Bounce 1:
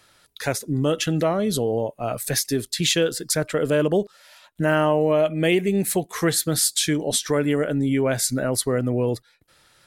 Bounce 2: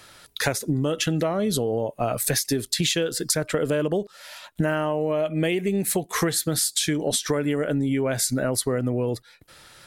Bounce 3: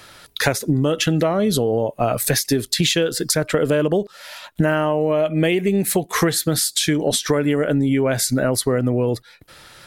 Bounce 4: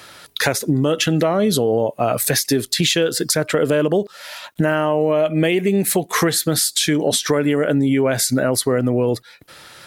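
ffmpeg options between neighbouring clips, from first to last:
-af "acompressor=threshold=0.0398:ratio=12,volume=2.51"
-af "equalizer=f=8400:t=o:w=1.1:g=-3.5,volume=1.88"
-filter_complex "[0:a]highpass=f=130:p=1,asplit=2[s0][s1];[s1]alimiter=limit=0.251:level=0:latency=1,volume=0.841[s2];[s0][s2]amix=inputs=2:normalize=0,acrusher=bits=10:mix=0:aa=0.000001,volume=0.75"

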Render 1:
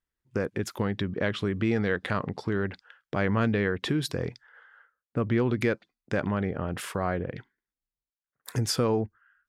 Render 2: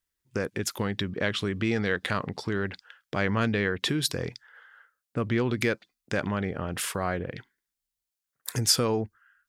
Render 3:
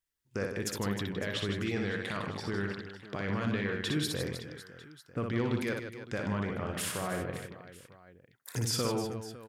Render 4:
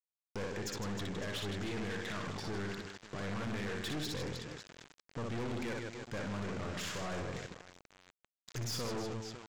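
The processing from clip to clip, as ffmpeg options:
-af "highshelf=f=2500:g=11,volume=0.841"
-af "alimiter=limit=0.119:level=0:latency=1:release=22,aecho=1:1:60|156|309.6|555.4|948.6:0.631|0.398|0.251|0.158|0.1,volume=0.562"
-af "aresample=16000,aeval=exprs='val(0)*gte(abs(val(0)),0.00562)':c=same,aresample=44100,aeval=exprs='(tanh(79.4*val(0)+0.4)-tanh(0.4))/79.4':c=same,volume=1.26"

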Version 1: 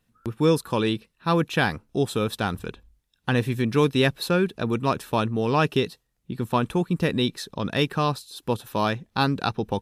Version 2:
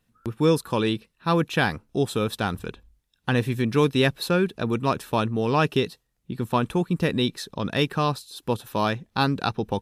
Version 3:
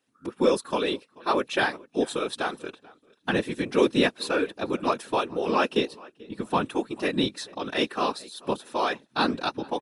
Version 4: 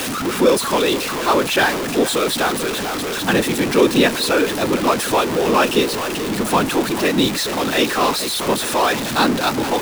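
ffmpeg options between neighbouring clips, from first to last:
-af anull
-filter_complex "[0:a]asplit=2[s0][s1];[s1]adelay=436,lowpass=f=3600:p=1,volume=0.0708,asplit=2[s2][s3];[s3]adelay=436,lowpass=f=3600:p=1,volume=0.29[s4];[s0][s2][s4]amix=inputs=3:normalize=0,afftfilt=real='re*between(b*sr/4096,230,11000)':imag='im*between(b*sr/4096,230,11000)':win_size=4096:overlap=0.75,afftfilt=real='hypot(re,im)*cos(2*PI*random(0))':imag='hypot(re,im)*sin(2*PI*random(1))':win_size=512:overlap=0.75,volume=1.78"
-af "aeval=exprs='val(0)+0.5*0.075*sgn(val(0))':c=same,volume=1.78"

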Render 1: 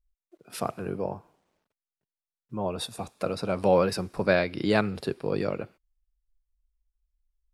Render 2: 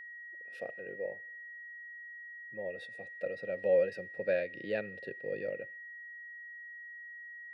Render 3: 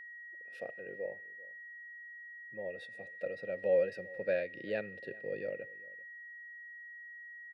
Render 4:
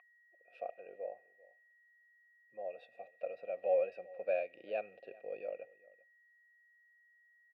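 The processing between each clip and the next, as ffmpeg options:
-filter_complex "[0:a]asubboost=boost=3.5:cutoff=220,asplit=3[s0][s1][s2];[s0]bandpass=f=530:t=q:w=8,volume=1[s3];[s1]bandpass=f=1840:t=q:w=8,volume=0.501[s4];[s2]bandpass=f=2480:t=q:w=8,volume=0.355[s5];[s3][s4][s5]amix=inputs=3:normalize=0,aeval=exprs='val(0)+0.00562*sin(2*PI*1900*n/s)':c=same"
-filter_complex "[0:a]asplit=2[s0][s1];[s1]adelay=390.7,volume=0.0794,highshelf=f=4000:g=-8.79[s2];[s0][s2]amix=inputs=2:normalize=0,volume=0.841"
-filter_complex "[0:a]asplit=3[s0][s1][s2];[s0]bandpass=f=730:t=q:w=8,volume=1[s3];[s1]bandpass=f=1090:t=q:w=8,volume=0.501[s4];[s2]bandpass=f=2440:t=q:w=8,volume=0.355[s5];[s3][s4][s5]amix=inputs=3:normalize=0,volume=2.99"

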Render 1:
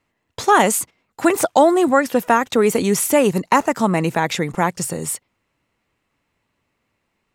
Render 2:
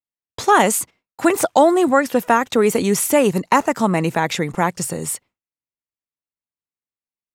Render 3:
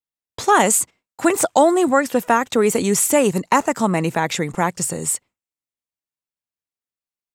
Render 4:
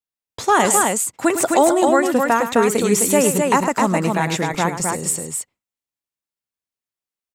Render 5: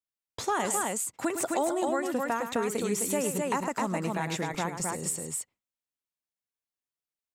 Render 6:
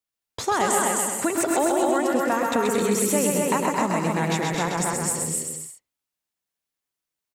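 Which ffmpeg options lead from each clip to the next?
-af "agate=range=0.0224:threshold=0.0126:ratio=3:detection=peak"
-af "adynamicequalizer=threshold=0.01:dfrequency=7700:dqfactor=2.7:tfrequency=7700:tqfactor=2.7:attack=5:release=100:ratio=0.375:range=4:mode=boostabove:tftype=bell,volume=0.891"
-af "aecho=1:1:106|260:0.299|0.668,volume=0.891"
-af "acompressor=threshold=0.0562:ratio=2,volume=0.501"
-af "aecho=1:1:130|221|284.7|329.3|360.5:0.631|0.398|0.251|0.158|0.1,volume=1.78"

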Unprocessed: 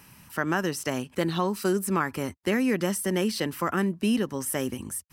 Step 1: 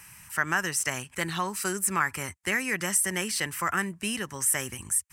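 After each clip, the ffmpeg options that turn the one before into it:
-af "equalizer=f=250:t=o:w=1:g=-11,equalizer=f=500:t=o:w=1:g=-7,equalizer=f=2000:t=o:w=1:g=7,equalizer=f=4000:t=o:w=1:g=-5,equalizer=f=8000:t=o:w=1:g=11"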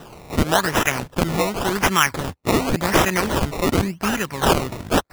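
-af "acrusher=samples=19:mix=1:aa=0.000001:lfo=1:lforange=19:lforate=0.9,volume=2.82"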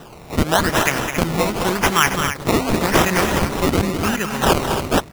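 -af "aecho=1:1:209.9|274.1:0.398|0.355,volume=1.12"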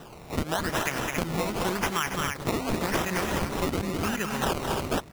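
-af "acompressor=threshold=0.126:ratio=6,volume=0.531"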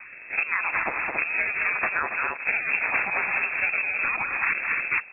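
-af "lowpass=f=2300:t=q:w=0.5098,lowpass=f=2300:t=q:w=0.6013,lowpass=f=2300:t=q:w=0.9,lowpass=f=2300:t=q:w=2.563,afreqshift=-2700,volume=1.33"

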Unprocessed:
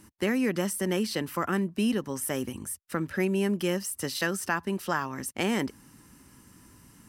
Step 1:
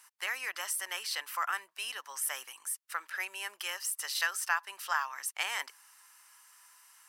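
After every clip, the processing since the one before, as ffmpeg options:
-af "highpass=f=920:w=0.5412,highpass=f=920:w=1.3066"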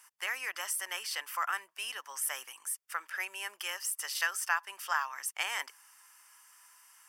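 -af "bandreject=f=4000:w=5.8"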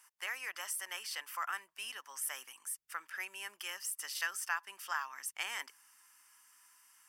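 -af "asubboost=boost=5.5:cutoff=240,volume=0.596"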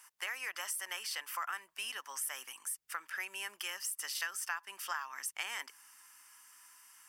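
-af "acompressor=threshold=0.00794:ratio=2.5,volume=1.78"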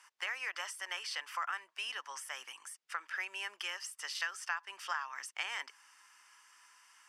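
-af "highpass=370,lowpass=5500,volume=1.19"

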